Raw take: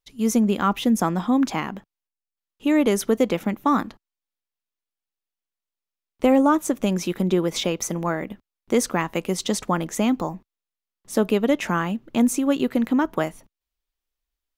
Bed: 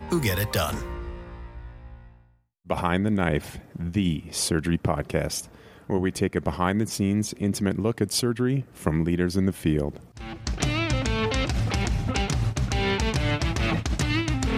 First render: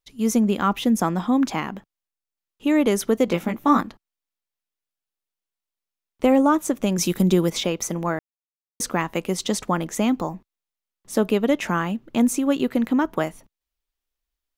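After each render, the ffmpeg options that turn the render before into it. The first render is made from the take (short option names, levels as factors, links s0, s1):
-filter_complex "[0:a]asettb=1/sr,asplit=3[s0][s1][s2];[s0]atrim=end=3.264[s3];[s1]atrim=start=3.26:end=3.81,asetpts=PTS-STARTPTS,afade=t=in:d=0.004:c=qsin,afade=t=out:st=0.546:d=0.004:c=qsin,asplit=2[s4][s5];[s5]adelay=17,volume=0.631[s6];[s4][s6]amix=inputs=2:normalize=0,atrim=end_sample=24255[s7];[s2]atrim=start=3.806[s8];[s3][s7]acrossfade=d=0.004:c1=hsin:c2=qsin[s9];[s9][s8]acrossfade=d=0.004:c1=qsin:c2=hsin,asettb=1/sr,asplit=3[s10][s11][s12];[s10]atrim=end=6.984[s13];[s11]atrim=start=6.98:end=7.5,asetpts=PTS-STARTPTS,afade=t=in:d=0.004:c=qsin,afade=t=out:st=0.516:d=0.004:c=qsin,bass=f=250:g=6,treble=f=4000:g=11[s14];[s12]atrim=start=7.496[s15];[s13][s14]acrossfade=d=0.004:c1=hsin:c2=qsin[s16];[s16][s15]acrossfade=d=0.004:c1=qsin:c2=hsin,asplit=3[s17][s18][s19];[s17]atrim=end=8.19,asetpts=PTS-STARTPTS,afade=t=out:st=8.186:d=0.004:c=hsin[s20];[s18]atrim=start=8.19:end=8.8,asetpts=PTS-STARTPTS,volume=0[s21];[s19]atrim=start=8.8,asetpts=PTS-STARTPTS,afade=t=in:d=0.004:c=hsin[s22];[s20][s21][s22]concat=n=3:v=0:a=1"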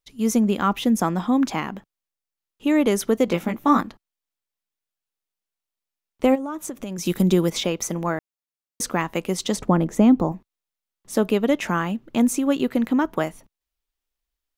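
-filter_complex "[0:a]asplit=3[s0][s1][s2];[s0]afade=t=out:st=6.34:d=0.02[s3];[s1]acompressor=threshold=0.0398:ratio=5:attack=3.2:release=140:knee=1:detection=peak,afade=t=in:st=6.34:d=0.02,afade=t=out:st=7.05:d=0.02[s4];[s2]afade=t=in:st=7.05:d=0.02[s5];[s3][s4][s5]amix=inputs=3:normalize=0,asettb=1/sr,asplit=3[s6][s7][s8];[s6]atrim=end=9.564[s9];[s7]atrim=start=9.56:end=10.32,asetpts=PTS-STARTPTS,afade=t=in:d=0.004:c=qsin,afade=t=out:st=0.756:d=0.004:c=qsin,tiltshelf=f=970:g=7.5[s10];[s8]atrim=start=10.316[s11];[s9][s10]acrossfade=d=0.004:c1=hsin:c2=qsin[s12];[s12][s11]acrossfade=d=0.004:c1=qsin:c2=hsin"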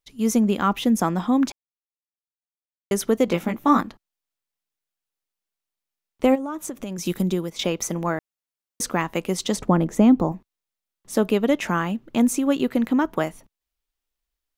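-filter_complex "[0:a]asplit=4[s0][s1][s2][s3];[s0]atrim=end=1.52,asetpts=PTS-STARTPTS,afade=t=out:st=1.516:d=0.004:c=hsin[s4];[s1]atrim=start=1.52:end=2.91,asetpts=PTS-STARTPTS,volume=0[s5];[s2]atrim=start=2.91:end=7.59,asetpts=PTS-STARTPTS,afade=t=in:d=0.004:c=hsin,afade=t=out:st=4:d=0.68:silence=0.223872[s6];[s3]atrim=start=7.59,asetpts=PTS-STARTPTS,afade=t=in:d=0.004:c=hsin:silence=0.223872[s7];[s4][s5][s6][s7]concat=n=4:v=0:a=1"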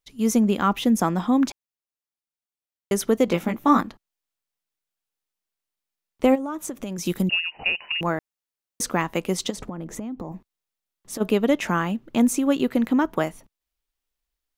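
-filter_complex "[0:a]asettb=1/sr,asplit=3[s0][s1][s2];[s0]atrim=end=7.294[s3];[s1]atrim=start=7.29:end=8.01,asetpts=PTS-STARTPTS,afade=t=in:d=0.004:c=qsin,afade=t=out:st=0.716:d=0.004:c=qsin,lowpass=f=2600:t=q:w=0.5098,lowpass=f=2600:t=q:w=0.6013,lowpass=f=2600:t=q:w=0.9,lowpass=f=2600:t=q:w=2.563,afreqshift=-3000[s4];[s2]atrim=start=8.006[s5];[s3][s4]acrossfade=d=0.004:c1=hsin:c2=qsin[s6];[s6][s5]acrossfade=d=0.004:c1=qsin:c2=hsin,asplit=3[s7][s8][s9];[s7]afade=t=out:st=9.49:d=0.02[s10];[s8]acompressor=threshold=0.0398:ratio=20:attack=3.2:release=140:knee=1:detection=peak,afade=t=in:st=9.49:d=0.02,afade=t=out:st=11.2:d=0.02[s11];[s9]afade=t=in:st=11.2:d=0.02[s12];[s10][s11][s12]amix=inputs=3:normalize=0"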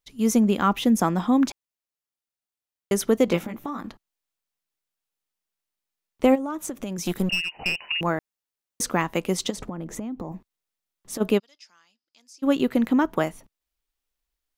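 -filter_complex "[0:a]asettb=1/sr,asplit=3[s0][s1][s2];[s0]atrim=end=3.404[s3];[s1]atrim=start=3.4:end=3.84,asetpts=PTS-STARTPTS,afade=t=in:d=0.004:c=qsin,afade=t=out:st=0.436:d=0.004:c=qsin,acompressor=threshold=0.0398:ratio=8:attack=3.2:release=140:knee=1:detection=peak[s4];[s2]atrim=start=3.836[s5];[s3][s4]acrossfade=d=0.004:c1=hsin:c2=qsin[s6];[s6][s5]acrossfade=d=0.004:c1=qsin:c2=hsin,asettb=1/sr,asplit=3[s7][s8][s9];[s7]atrim=end=6.484[s10];[s8]atrim=start=6.48:end=7.89,asetpts=PTS-STARTPTS,afade=t=in:d=0.004:c=qsin,afade=t=out:st=1.406:d=0.004:c=qsin,aeval=exprs='clip(val(0),-1,0.0562)':c=same[s11];[s9]atrim=start=7.886[s12];[s10][s11]acrossfade=d=0.004:c1=hsin:c2=qsin[s13];[s13][s12]acrossfade=d=0.004:c1=qsin:c2=hsin,asplit=3[s14][s15][s16];[s14]afade=t=out:st=11.38:d=0.02[s17];[s15]bandpass=f=5000:t=q:w=14,afade=t=in:st=11.38:d=0.02,afade=t=out:st=12.42:d=0.02[s18];[s16]afade=t=in:st=12.42:d=0.02[s19];[s17][s18][s19]amix=inputs=3:normalize=0"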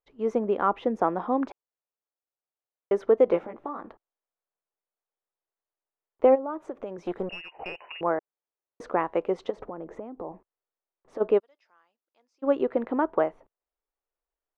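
-af "lowpass=1200,lowshelf=f=300:t=q:w=1.5:g=-11.5"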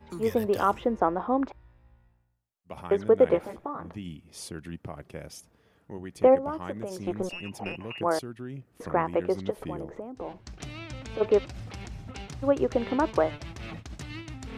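-filter_complex "[1:a]volume=0.178[s0];[0:a][s0]amix=inputs=2:normalize=0"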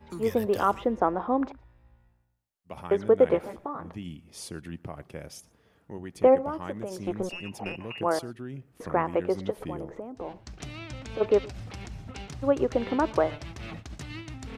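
-filter_complex "[0:a]asplit=2[s0][s1];[s1]adelay=116.6,volume=0.0708,highshelf=f=4000:g=-2.62[s2];[s0][s2]amix=inputs=2:normalize=0"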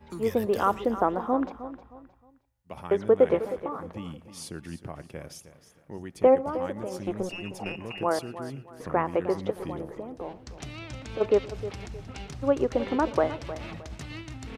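-af "aecho=1:1:311|622|933:0.211|0.0655|0.0203"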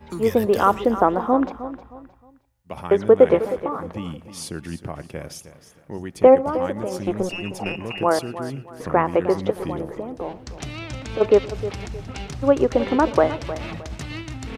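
-af "volume=2.24"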